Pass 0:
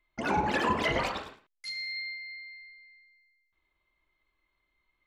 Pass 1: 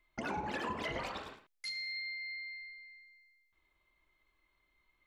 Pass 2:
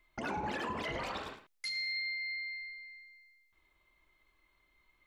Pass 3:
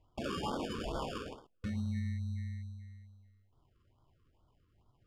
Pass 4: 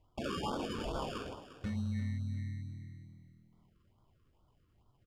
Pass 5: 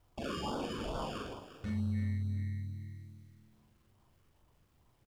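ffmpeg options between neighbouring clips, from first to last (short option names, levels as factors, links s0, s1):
-af "acompressor=threshold=0.00891:ratio=3,volume=1.19"
-af "alimiter=level_in=2.66:limit=0.0631:level=0:latency=1:release=65,volume=0.376,volume=1.58"
-af "acrusher=samples=22:mix=1:aa=0.000001,adynamicsmooth=sensitivity=2:basefreq=5300,afftfilt=real='re*(1-between(b*sr/1024,700*pow(2200/700,0.5+0.5*sin(2*PI*2.3*pts/sr))/1.41,700*pow(2200/700,0.5+0.5*sin(2*PI*2.3*pts/sr))*1.41))':imag='im*(1-between(b*sr/1024,700*pow(2200/700,0.5+0.5*sin(2*PI*2.3*pts/sr))/1.41,700*pow(2200/700,0.5+0.5*sin(2*PI*2.3*pts/sr))*1.41))':win_size=1024:overlap=0.75,volume=1.19"
-filter_complex "[0:a]asplit=4[s0][s1][s2][s3];[s1]adelay=350,afreqshift=40,volume=0.2[s4];[s2]adelay=700,afreqshift=80,volume=0.0638[s5];[s3]adelay=1050,afreqshift=120,volume=0.0204[s6];[s0][s4][s5][s6]amix=inputs=4:normalize=0"
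-filter_complex "[0:a]asplit=2[s0][s1];[s1]asoftclip=type=tanh:threshold=0.0133,volume=0.376[s2];[s0][s2]amix=inputs=2:normalize=0,acrusher=bits=11:mix=0:aa=0.000001,asplit=2[s3][s4];[s4]adelay=42,volume=0.631[s5];[s3][s5]amix=inputs=2:normalize=0,volume=0.668"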